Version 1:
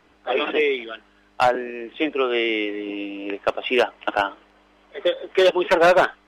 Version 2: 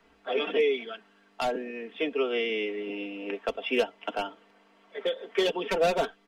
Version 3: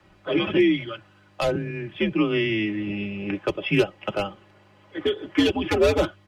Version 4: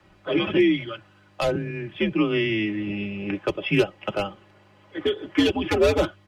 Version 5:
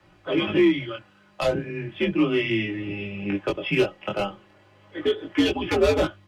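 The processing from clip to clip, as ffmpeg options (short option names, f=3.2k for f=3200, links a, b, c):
-filter_complex "[0:a]bandreject=f=50:t=h:w=6,bandreject=f=100:t=h:w=6,aecho=1:1:4.4:0.68,acrossover=split=240|620|2600[a][b][c][d];[c]acompressor=threshold=-32dB:ratio=6[e];[a][b][e][d]amix=inputs=4:normalize=0,volume=-6dB"
-af "equalizer=f=110:t=o:w=1.7:g=10,afreqshift=-100,volume=4.5dB"
-af anull
-filter_complex "[0:a]flanger=delay=17:depth=7.9:speed=0.36,asplit=2[a][b];[b]asoftclip=type=hard:threshold=-20dB,volume=-8dB[c];[a][c]amix=inputs=2:normalize=0"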